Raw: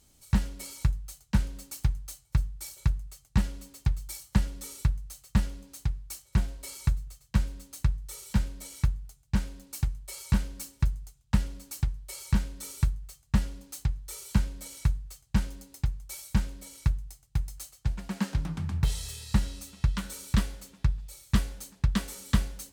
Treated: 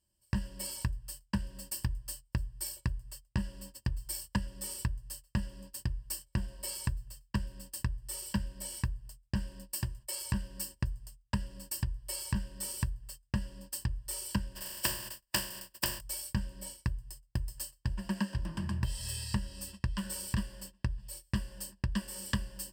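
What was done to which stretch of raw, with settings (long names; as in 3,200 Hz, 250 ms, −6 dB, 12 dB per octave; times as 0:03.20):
0:09.71–0:10.20: high-pass filter 100 Hz → 220 Hz 6 dB per octave
0:14.55–0:15.99: compressing power law on the bin magnitudes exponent 0.24
whole clip: noise gate −47 dBFS, range −21 dB; EQ curve with evenly spaced ripples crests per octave 1.3, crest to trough 15 dB; downward compressor 5 to 1, threshold −30 dBFS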